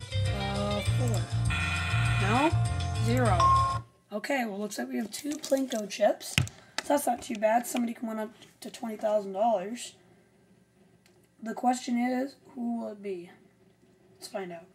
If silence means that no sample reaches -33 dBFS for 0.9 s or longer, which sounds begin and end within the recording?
11.46–13.16 s

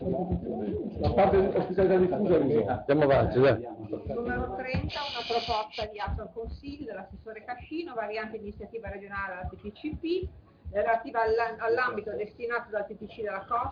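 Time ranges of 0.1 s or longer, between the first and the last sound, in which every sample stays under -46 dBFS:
10.40–10.65 s

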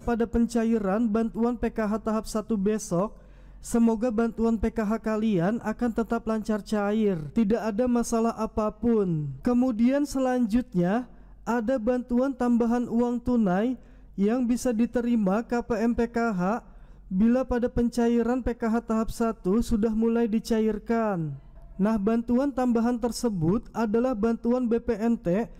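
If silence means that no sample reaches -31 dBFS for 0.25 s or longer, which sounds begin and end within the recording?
3.66–11.02 s
11.47–13.74 s
14.18–16.59 s
17.11–21.33 s

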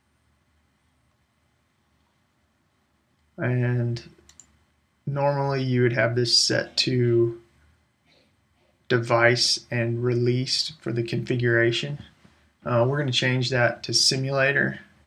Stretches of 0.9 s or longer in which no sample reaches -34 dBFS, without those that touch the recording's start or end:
7.34–8.90 s

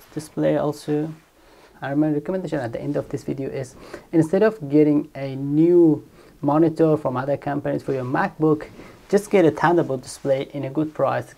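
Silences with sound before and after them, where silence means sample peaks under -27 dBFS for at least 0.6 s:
1.11–1.83 s

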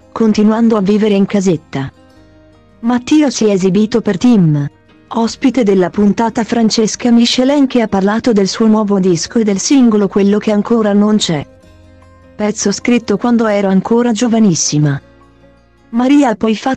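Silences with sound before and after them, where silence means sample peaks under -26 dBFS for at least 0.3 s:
1.89–2.83 s
4.68–5.11 s
11.43–12.39 s
14.99–15.93 s

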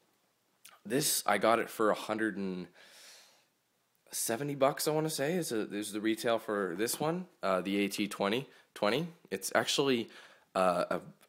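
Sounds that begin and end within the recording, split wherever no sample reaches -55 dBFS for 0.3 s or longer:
0.65–3.35 s

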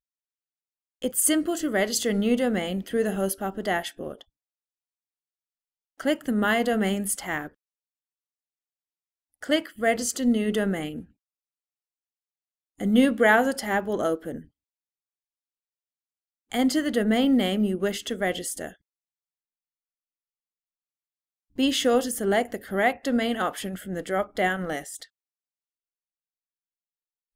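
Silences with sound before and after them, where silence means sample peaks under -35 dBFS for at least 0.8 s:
4.21–6.00 s
7.47–9.43 s
11.01–12.80 s
14.41–16.52 s
18.69–21.58 s

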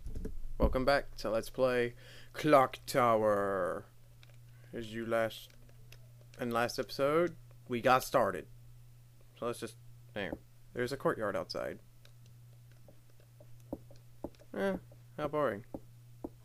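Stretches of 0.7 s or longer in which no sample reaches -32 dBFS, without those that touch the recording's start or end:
3.78–4.76 s
5.28–6.41 s
8.39–9.42 s
11.71–13.73 s

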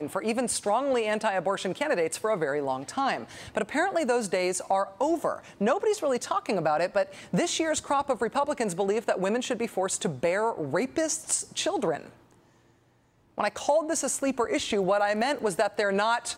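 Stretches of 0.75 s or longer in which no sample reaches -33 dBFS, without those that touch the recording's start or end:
12.06–13.38 s

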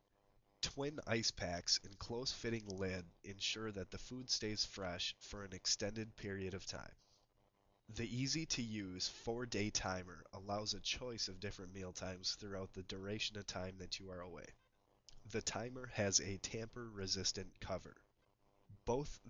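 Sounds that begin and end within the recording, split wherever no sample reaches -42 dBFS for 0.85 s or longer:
7.96–17.77 s

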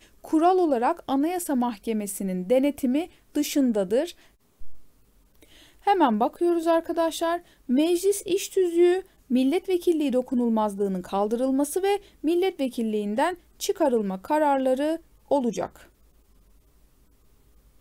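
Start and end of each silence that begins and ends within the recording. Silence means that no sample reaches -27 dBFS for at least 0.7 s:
4.71–5.87 s

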